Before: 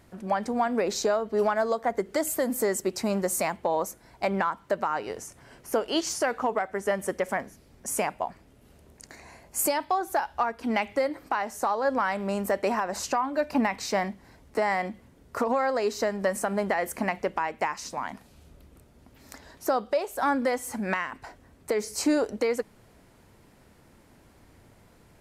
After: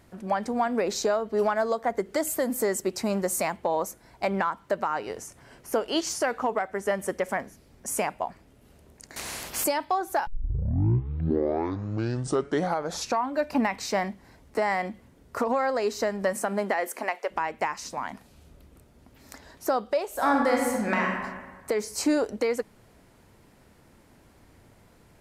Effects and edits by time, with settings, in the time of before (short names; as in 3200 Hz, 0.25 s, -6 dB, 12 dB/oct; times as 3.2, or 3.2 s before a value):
9.16–9.64 spectral compressor 4:1
10.27 tape start 3.08 s
16.33–17.3 HPF 120 Hz -> 490 Hz 24 dB/oct
20.07–21.22 reverb throw, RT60 1.4 s, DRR -1 dB